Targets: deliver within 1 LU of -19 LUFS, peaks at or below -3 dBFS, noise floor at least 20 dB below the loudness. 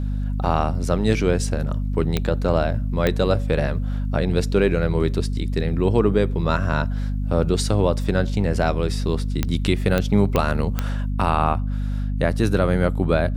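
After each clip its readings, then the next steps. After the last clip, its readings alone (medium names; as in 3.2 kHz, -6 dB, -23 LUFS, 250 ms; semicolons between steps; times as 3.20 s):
clicks found 6; hum 50 Hz; highest harmonic 250 Hz; hum level -21 dBFS; loudness -22.0 LUFS; peak level -4.5 dBFS; loudness target -19.0 LUFS
-> de-click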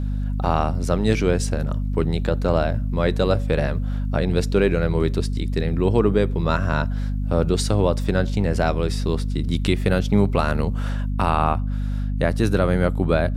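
clicks found 0; hum 50 Hz; highest harmonic 250 Hz; hum level -21 dBFS
-> hum notches 50/100/150/200/250 Hz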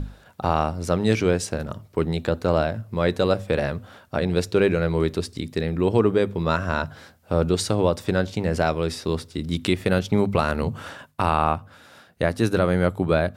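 hum not found; loudness -23.5 LUFS; peak level -5.5 dBFS; loudness target -19.0 LUFS
-> trim +4.5 dB; peak limiter -3 dBFS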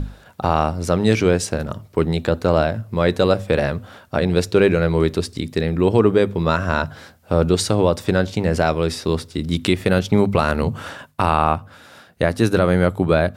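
loudness -19.5 LUFS; peak level -3.0 dBFS; noise floor -48 dBFS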